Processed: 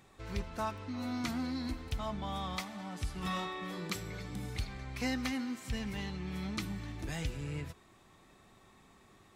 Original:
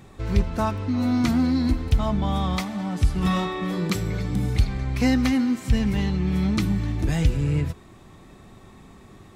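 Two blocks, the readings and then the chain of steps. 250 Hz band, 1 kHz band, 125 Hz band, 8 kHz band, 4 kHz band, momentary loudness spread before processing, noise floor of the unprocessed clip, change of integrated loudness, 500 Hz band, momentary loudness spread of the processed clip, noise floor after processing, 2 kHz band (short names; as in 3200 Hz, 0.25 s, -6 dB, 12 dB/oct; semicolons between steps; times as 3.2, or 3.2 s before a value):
-16.0 dB, -10.0 dB, -17.5 dB, -8.0 dB, -8.0 dB, 5 LU, -48 dBFS, -15.0 dB, -12.5 dB, 6 LU, -62 dBFS, -8.5 dB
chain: low shelf 450 Hz -10 dB; gain -8 dB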